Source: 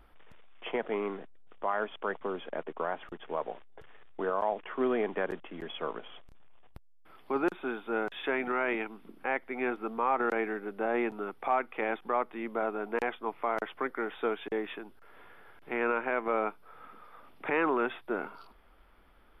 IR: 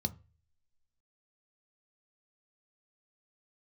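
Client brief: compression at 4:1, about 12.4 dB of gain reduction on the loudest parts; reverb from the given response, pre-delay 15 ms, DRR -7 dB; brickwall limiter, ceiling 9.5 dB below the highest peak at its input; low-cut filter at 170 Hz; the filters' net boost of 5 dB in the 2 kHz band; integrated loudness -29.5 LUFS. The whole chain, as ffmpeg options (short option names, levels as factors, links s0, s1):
-filter_complex "[0:a]highpass=170,equalizer=f=2000:t=o:g=6.5,acompressor=threshold=0.0126:ratio=4,alimiter=level_in=2:limit=0.0631:level=0:latency=1,volume=0.501,asplit=2[s0][s1];[1:a]atrim=start_sample=2205,adelay=15[s2];[s1][s2]afir=irnorm=-1:irlink=0,volume=1.88[s3];[s0][s3]amix=inputs=2:normalize=0,volume=1.5"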